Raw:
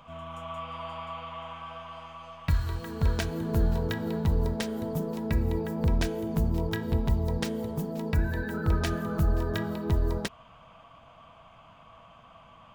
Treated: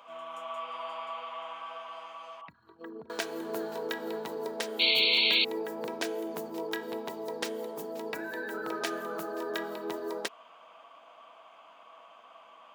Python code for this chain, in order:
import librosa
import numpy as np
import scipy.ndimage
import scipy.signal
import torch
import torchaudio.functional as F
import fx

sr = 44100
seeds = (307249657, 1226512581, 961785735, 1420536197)

y = fx.envelope_sharpen(x, sr, power=2.0, at=(2.41, 3.1))
y = scipy.signal.sosfilt(scipy.signal.butter(4, 330.0, 'highpass', fs=sr, output='sos'), y)
y = fx.spec_paint(y, sr, seeds[0], shape='noise', start_s=4.79, length_s=0.66, low_hz=2100.0, high_hz=4500.0, level_db=-25.0)